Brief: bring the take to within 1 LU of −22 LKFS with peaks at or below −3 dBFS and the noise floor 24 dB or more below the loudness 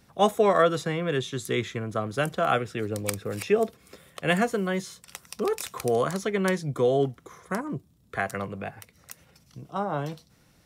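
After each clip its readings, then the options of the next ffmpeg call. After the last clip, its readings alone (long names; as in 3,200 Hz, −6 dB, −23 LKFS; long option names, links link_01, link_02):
integrated loudness −27.5 LKFS; sample peak −7.5 dBFS; target loudness −22.0 LKFS
→ -af "volume=5.5dB,alimiter=limit=-3dB:level=0:latency=1"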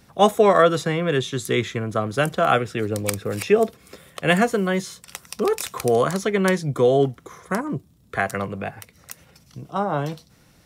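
integrated loudness −22.0 LKFS; sample peak −3.0 dBFS; background noise floor −56 dBFS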